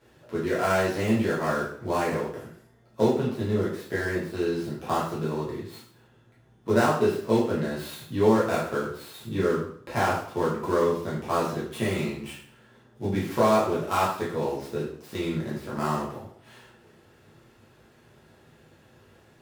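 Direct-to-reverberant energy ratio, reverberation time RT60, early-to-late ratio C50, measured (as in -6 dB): -8.5 dB, 0.60 s, 4.0 dB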